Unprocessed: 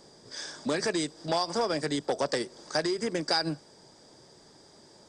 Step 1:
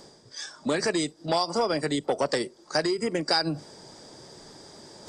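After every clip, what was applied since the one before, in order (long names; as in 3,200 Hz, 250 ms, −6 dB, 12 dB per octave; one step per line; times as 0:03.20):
noise reduction from a noise print of the clip's start 12 dB
reversed playback
upward compression, threshold −35 dBFS
reversed playback
level +3 dB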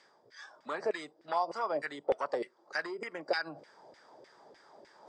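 auto-filter band-pass saw down 3.3 Hz 490–2,200 Hz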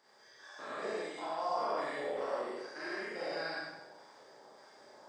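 spectrum averaged block by block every 200 ms
high-shelf EQ 4,400 Hz +6 dB
four-comb reverb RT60 0.9 s, combs from 29 ms, DRR −7.5 dB
level −5.5 dB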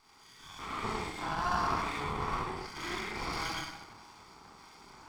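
lower of the sound and its delayed copy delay 0.88 ms
level +5.5 dB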